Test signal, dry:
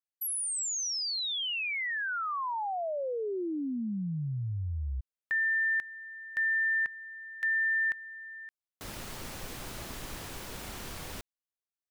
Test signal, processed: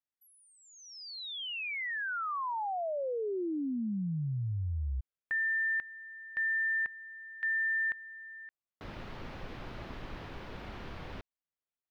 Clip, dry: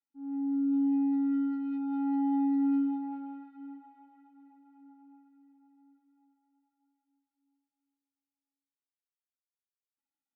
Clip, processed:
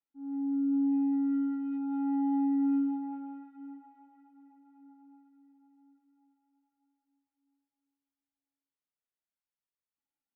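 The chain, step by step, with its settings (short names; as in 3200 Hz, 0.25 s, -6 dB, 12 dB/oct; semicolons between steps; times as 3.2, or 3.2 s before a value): air absorption 310 m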